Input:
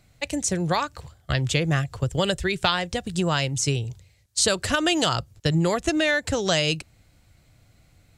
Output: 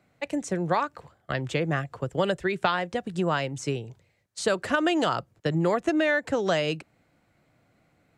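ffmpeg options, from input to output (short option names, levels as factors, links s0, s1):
-filter_complex "[0:a]acrossover=split=160 2200:gain=0.0891 1 0.2[s0][s1][s2];[s0][s1][s2]amix=inputs=3:normalize=0"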